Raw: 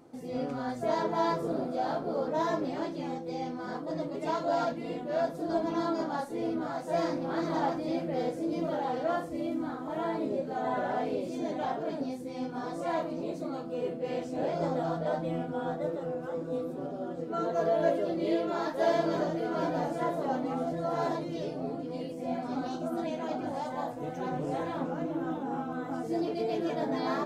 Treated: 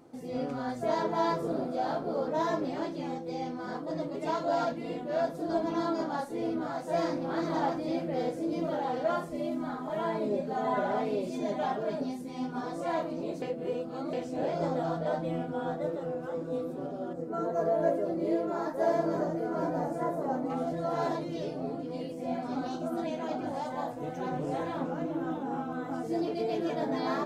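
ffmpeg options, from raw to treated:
ffmpeg -i in.wav -filter_complex "[0:a]asettb=1/sr,asplit=3[link_01][link_02][link_03];[link_01]atrim=end=9.044[link_04];[link_02]atrim=start=9.04:end=12.61,asetpts=PTS-STARTPTS,afade=type=in:duration=0.004:curve=qsin,afade=type=out:start_time=3.566:duration=0.004:curve=qsin,aecho=1:1:4.9:0.65,atrim=end_sample=157437[link_05];[link_03]atrim=start=12.606[link_06];[link_04][link_05]acrossfade=duration=0.004:curve1=hsin:curve2=qsin[link_07];[link_07][link_06]acrossfade=duration=0.004:curve1=qsin:curve2=hsin,asettb=1/sr,asplit=3[link_08][link_09][link_10];[link_08]atrim=end=17.134[link_11];[link_09]atrim=start=17.13:end=20.5,asetpts=PTS-STARTPTS,afade=type=in:duration=0.004:curve=qsin,afade=type=out:start_time=3.366:duration=0.004:curve=qsin,equalizer=frequency=3300:width=1.1:gain=-14[link_12];[link_10]atrim=start=20.496[link_13];[link_11][link_12]acrossfade=duration=0.004:curve1=hsin:curve2=qsin[link_14];[link_14][link_13]acrossfade=duration=0.004:curve1=qsin:curve2=hsin,asplit=3[link_15][link_16][link_17];[link_15]atrim=end=13.422[link_18];[link_16]atrim=start=13.418:end=14.132,asetpts=PTS-STARTPTS,areverse[link_19];[link_17]atrim=start=14.128[link_20];[link_18][link_19]acrossfade=duration=0.004:curve1=hsin:curve2=hsin[link_21];[link_21][link_20]acrossfade=duration=0.004:curve1=hsin:curve2=hsin" out.wav

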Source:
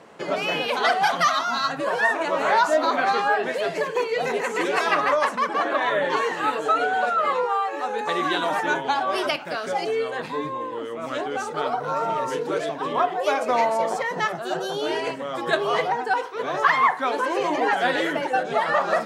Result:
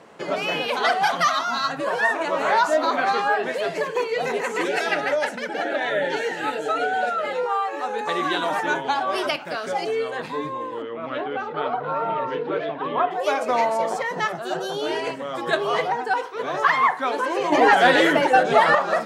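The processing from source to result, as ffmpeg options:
ffmpeg -i in.wav -filter_complex "[0:a]asettb=1/sr,asplit=3[link_01][link_02][link_03];[link_01]atrim=end=4.684[link_04];[link_02]atrim=start=4.68:end=7.46,asetpts=PTS-STARTPTS,afade=type=in:duration=0.004:curve=qsin,afade=type=out:start_time=2.776:duration=0.004:curve=qsin,asuperstop=centerf=1100:order=4:qfactor=2.5[link_05];[link_03]atrim=start=7.456[link_06];[link_04][link_05]acrossfade=duration=0.004:curve1=hsin:curve2=qsin[link_07];[link_07][link_06]acrossfade=duration=0.004:curve1=qsin:curve2=hsin,asettb=1/sr,asplit=3[link_08][link_09][link_10];[link_08]atrim=end=10.824[link_11];[link_09]atrim=start=10.82:end=13.11,asetpts=PTS-STARTPTS,afade=type=in:duration=0.004:curve=qsin,afade=type=out:start_time=2.286:duration=0.004:curve=qsin,lowpass=frequency=3400:width=0.5412,lowpass=frequency=3400:width=1.3066[link_12];[link_10]atrim=start=13.106[link_13];[link_11][link_12]acrossfade=duration=0.004:curve1=hsin:curve2=qsin[link_14];[link_14][link_13]acrossfade=duration=0.004:curve1=qsin:curve2=hsin,asettb=1/sr,asplit=3[link_15][link_16][link_17];[link_15]atrim=end=17.524[link_18];[link_16]atrim=start=17.52:end=18.75,asetpts=PTS-STARTPTS,afade=type=in:duration=0.004:curve=qsin,afade=type=out:start_time=1.226:duration=0.004:curve=qsin,acontrast=88[link_19];[link_17]atrim=start=18.746[link_20];[link_18][link_19]acrossfade=duration=0.004:curve1=hsin:curve2=qsin[link_21];[link_21][link_20]acrossfade=duration=0.004:curve1=qsin:curve2=hsin" out.wav

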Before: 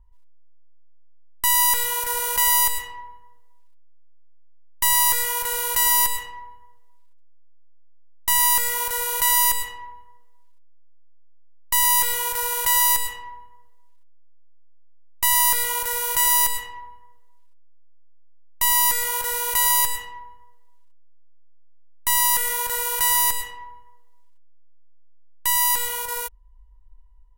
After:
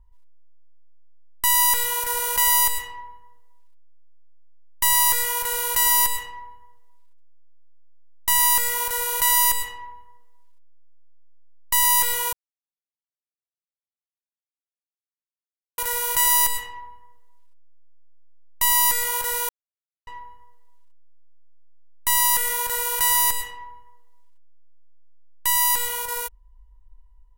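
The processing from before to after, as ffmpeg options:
ffmpeg -i in.wav -filter_complex "[0:a]asplit=5[link_01][link_02][link_03][link_04][link_05];[link_01]atrim=end=12.33,asetpts=PTS-STARTPTS,afade=type=out:start_time=12.326:duration=0.004:curve=hsin[link_06];[link_02]atrim=start=12.33:end=15.78,asetpts=PTS-STARTPTS,volume=0[link_07];[link_03]atrim=start=15.78:end=19.49,asetpts=PTS-STARTPTS,afade=type=in:duration=0.004:curve=hsin,afade=type=out:start_time=3.706:duration=0.004:curve=hsin[link_08];[link_04]atrim=start=19.49:end=20.07,asetpts=PTS-STARTPTS,volume=0[link_09];[link_05]atrim=start=20.07,asetpts=PTS-STARTPTS,afade=type=in:duration=0.004:curve=hsin[link_10];[link_06][link_07][link_08][link_09][link_10]concat=n=5:v=0:a=1" out.wav

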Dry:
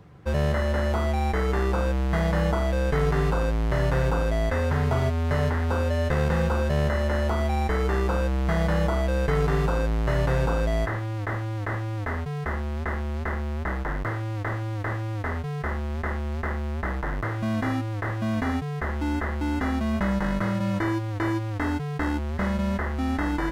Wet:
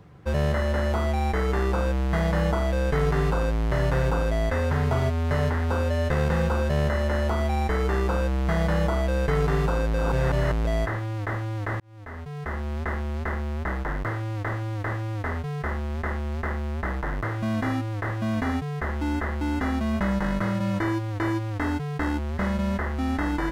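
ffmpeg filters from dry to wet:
ffmpeg -i in.wav -filter_complex "[0:a]asplit=4[link_01][link_02][link_03][link_04];[link_01]atrim=end=9.942[link_05];[link_02]atrim=start=9.938:end=10.652,asetpts=PTS-STARTPTS,areverse[link_06];[link_03]atrim=start=10.648:end=11.8,asetpts=PTS-STARTPTS,afade=type=out:start_time=1.148:duration=0.004:curve=hsin[link_07];[link_04]atrim=start=11.8,asetpts=PTS-STARTPTS,afade=type=in:duration=0.92[link_08];[link_05][link_06]acrossfade=duration=0.004:curve1=hsin:curve2=hsin[link_09];[link_07][link_08]concat=n=2:v=0:a=1[link_10];[link_09][link_10]acrossfade=duration=0.004:curve1=hsin:curve2=hsin" out.wav

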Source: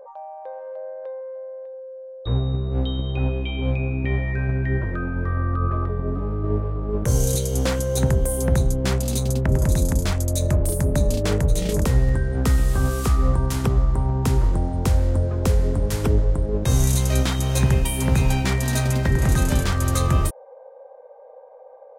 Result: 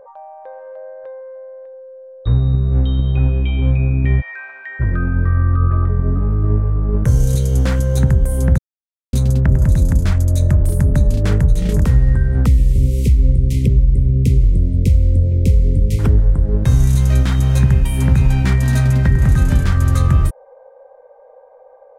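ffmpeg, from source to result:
ffmpeg -i in.wav -filter_complex "[0:a]asplit=3[link_01][link_02][link_03];[link_01]afade=type=out:start_time=4.2:duration=0.02[link_04];[link_02]highpass=frequency=800:width=0.5412,highpass=frequency=800:width=1.3066,afade=type=in:start_time=4.2:duration=0.02,afade=type=out:start_time=4.79:duration=0.02[link_05];[link_03]afade=type=in:start_time=4.79:duration=0.02[link_06];[link_04][link_05][link_06]amix=inputs=3:normalize=0,asettb=1/sr,asplit=3[link_07][link_08][link_09];[link_07]atrim=end=12.464[link_10];[link_08]atrim=start=12.46:end=15.99,asetpts=PTS-STARTPTS,afade=type=in:duration=0.004:curve=qsin,afade=type=out:start_time=3.526:duration=0.004:curve=qsin,asuperstop=centerf=1100:order=20:qfactor=0.76[link_11];[link_09]atrim=start=15.986[link_12];[link_10][link_11]acrossfade=duration=0.004:curve1=hsin:curve2=qsin[link_13];[link_13][link_12]acrossfade=duration=0.004:curve1=qsin:curve2=hsin,asplit=3[link_14][link_15][link_16];[link_14]atrim=end=8.58,asetpts=PTS-STARTPTS,afade=type=out:start_time=8.576:duration=0.004:curve=hsin[link_17];[link_15]atrim=start=8.58:end=9.13,asetpts=PTS-STARTPTS,volume=0[link_18];[link_16]atrim=start=9.13,asetpts=PTS-STARTPTS,afade=type=in:duration=0.004:curve=hsin[link_19];[link_17][link_18][link_19]concat=n=3:v=0:a=1,bass=frequency=250:gain=12,treble=frequency=4000:gain=-2,acompressor=threshold=-10dB:ratio=2,equalizer=frequency=1600:width=1.3:gain=6,volume=-1dB" out.wav

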